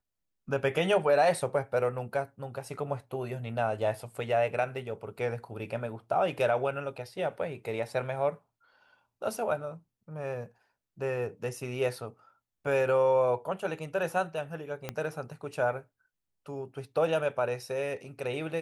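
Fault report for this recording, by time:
0:14.89: click −18 dBFS

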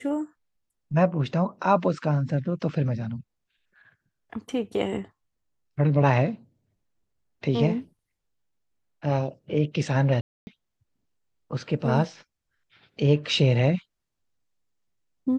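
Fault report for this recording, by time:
0:10.21–0:10.47: drop-out 260 ms

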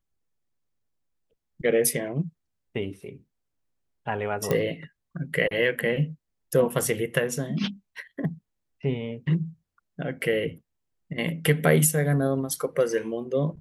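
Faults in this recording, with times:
0:04.51: click −11 dBFS

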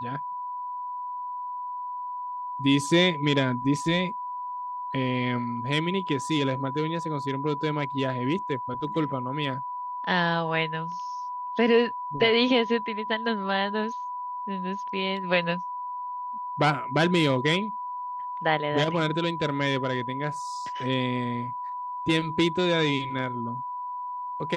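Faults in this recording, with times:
whistle 990 Hz −31 dBFS

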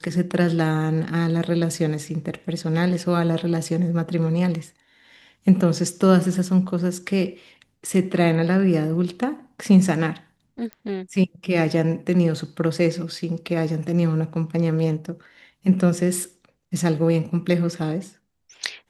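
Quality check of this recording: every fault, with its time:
0:10.73: click −21 dBFS

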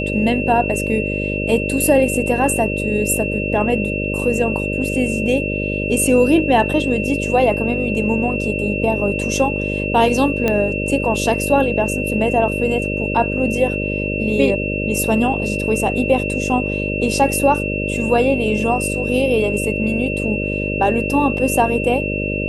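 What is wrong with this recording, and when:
mains buzz 50 Hz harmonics 12 −23 dBFS
whistle 2,700 Hz −24 dBFS
0:10.48: click −5 dBFS

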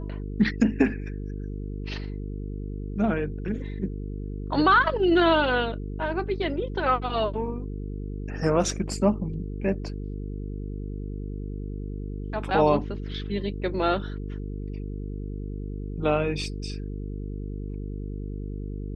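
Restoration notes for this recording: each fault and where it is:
mains buzz 50 Hz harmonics 9 −33 dBFS

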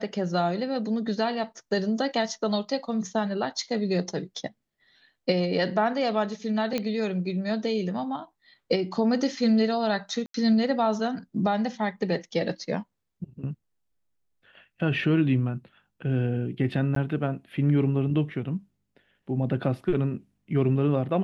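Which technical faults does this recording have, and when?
0:06.78: click −14 dBFS
0:10.26–0:10.34: drop-out 83 ms
0:16.95–0:16.96: drop-out 13 ms

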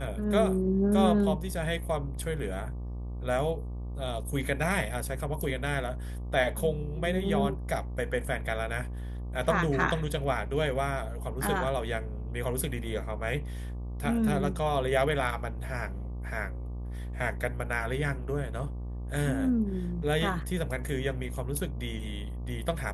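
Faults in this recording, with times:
mains buzz 60 Hz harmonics 20 −36 dBFS

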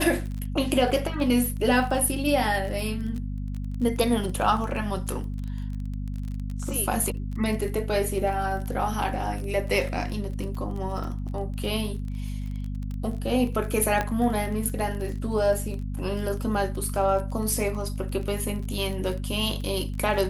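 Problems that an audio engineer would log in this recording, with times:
surface crackle 26 per second −32 dBFS
mains hum 50 Hz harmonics 5 −31 dBFS
0:00.91–0:00.92: drop-out 5.7 ms
0:14.01: click −12 dBFS

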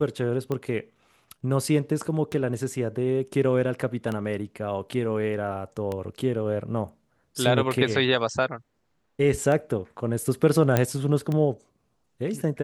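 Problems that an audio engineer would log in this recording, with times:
scratch tick 33 1/3 rpm −17 dBFS
0:10.77: click −7 dBFS

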